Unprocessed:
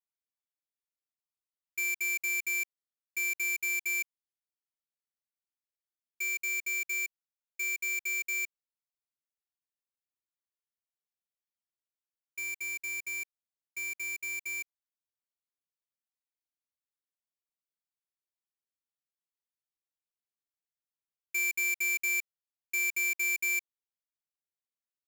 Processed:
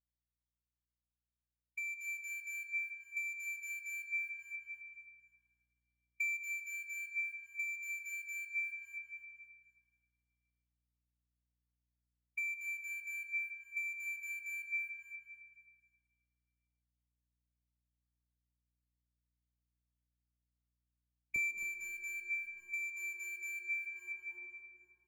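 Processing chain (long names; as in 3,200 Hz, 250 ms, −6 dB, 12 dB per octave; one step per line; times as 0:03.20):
adaptive Wiener filter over 9 samples
high-pass filter 1,500 Hz 12 dB per octave, from 0:21.36 330 Hz
double-tracking delay 14 ms −11 dB
convolution reverb RT60 3.2 s, pre-delay 100 ms, DRR 4.5 dB
downward compressor 2.5 to 1, threshold −54 dBFS, peak gain reduction 16.5 dB
notch filter 2,800 Hz, Q 7.5
repeating echo 266 ms, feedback 47%, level −6 dB
mains hum 60 Hz, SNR 32 dB
high-shelf EQ 6,000 Hz −9 dB
speech leveller within 4 dB 0.5 s
every bin expanded away from the loudest bin 1.5 to 1
level +7.5 dB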